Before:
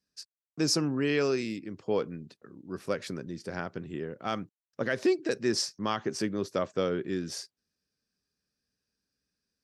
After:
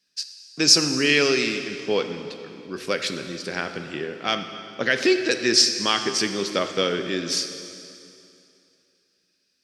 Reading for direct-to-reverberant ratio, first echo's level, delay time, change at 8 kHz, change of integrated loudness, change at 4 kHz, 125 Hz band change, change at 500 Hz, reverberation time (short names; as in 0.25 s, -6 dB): 7.0 dB, none, none, +13.0 dB, +9.5 dB, +15.5 dB, +1.5 dB, +5.5 dB, 2.7 s